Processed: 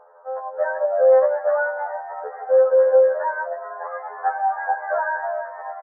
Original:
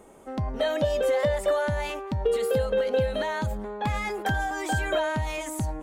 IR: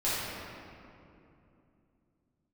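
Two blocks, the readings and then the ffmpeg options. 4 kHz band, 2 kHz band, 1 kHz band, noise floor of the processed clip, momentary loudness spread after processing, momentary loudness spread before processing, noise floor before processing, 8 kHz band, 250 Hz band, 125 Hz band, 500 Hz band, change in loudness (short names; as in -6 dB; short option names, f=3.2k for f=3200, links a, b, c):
under -40 dB, +3.0 dB, +7.5 dB, -40 dBFS, 16 LU, 7 LU, -39 dBFS, under -40 dB, under -25 dB, under -40 dB, +7.5 dB, +7.0 dB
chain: -filter_complex "[0:a]asuperpass=centerf=900:order=20:qfactor=0.72,asplit=7[a][b][c][d][e][f][g];[b]adelay=314,afreqshift=60,volume=-12dB[h];[c]adelay=628,afreqshift=120,volume=-17.5dB[i];[d]adelay=942,afreqshift=180,volume=-23dB[j];[e]adelay=1256,afreqshift=240,volume=-28.5dB[k];[f]adelay=1570,afreqshift=300,volume=-34.1dB[l];[g]adelay=1884,afreqshift=360,volume=-39.6dB[m];[a][h][i][j][k][l][m]amix=inputs=7:normalize=0,afftfilt=real='re*2*eq(mod(b,4),0)':imag='im*2*eq(mod(b,4),0)':win_size=2048:overlap=0.75,volume=8dB"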